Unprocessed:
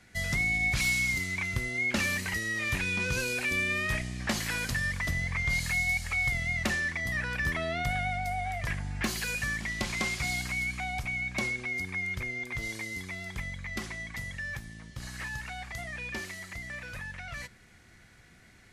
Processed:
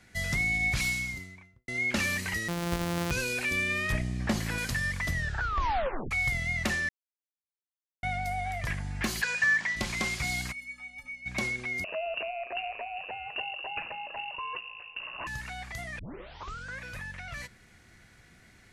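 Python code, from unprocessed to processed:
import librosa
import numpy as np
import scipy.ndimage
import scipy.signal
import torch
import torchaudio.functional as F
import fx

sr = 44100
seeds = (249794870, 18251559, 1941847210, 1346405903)

y = fx.studio_fade_out(x, sr, start_s=0.69, length_s=0.99)
y = fx.sample_sort(y, sr, block=256, at=(2.48, 3.11))
y = fx.tilt_shelf(y, sr, db=5.0, hz=920.0, at=(3.92, 4.58))
y = fx.cabinet(y, sr, low_hz=220.0, low_slope=12, high_hz=7500.0, hz=(230.0, 330.0, 960.0, 1700.0), db=(-7, -8, 7, 10), at=(9.21, 9.75), fade=0.02)
y = fx.stiff_resonator(y, sr, f0_hz=260.0, decay_s=0.26, stiffness=0.03, at=(10.51, 11.25), fade=0.02)
y = fx.freq_invert(y, sr, carrier_hz=2800, at=(11.84, 15.27))
y = fx.edit(y, sr, fx.tape_stop(start_s=5.13, length_s=0.98),
    fx.silence(start_s=6.89, length_s=1.14),
    fx.tape_start(start_s=15.99, length_s=0.85), tone=tone)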